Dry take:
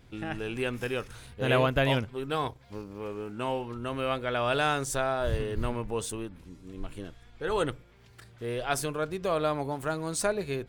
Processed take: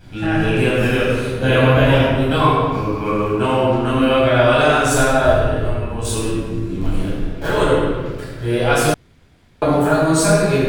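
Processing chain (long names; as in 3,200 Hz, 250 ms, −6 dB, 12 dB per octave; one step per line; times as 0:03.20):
0:06.79–0:07.51: sub-harmonics by changed cycles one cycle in 3, muted
downward compressor, threshold −27 dBFS, peak gain reduction 7.5 dB
0:02.40–0:03.17: hollow resonant body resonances 1,100/2,300 Hz, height 15 dB, ringing for 45 ms
0:05.30–0:06.05: tuned comb filter 100 Hz, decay 0.34 s, harmonics all, mix 80%
convolution reverb RT60 1.5 s, pre-delay 11 ms, DRR −9 dB
0:08.94–0:09.62: fill with room tone
level +4.5 dB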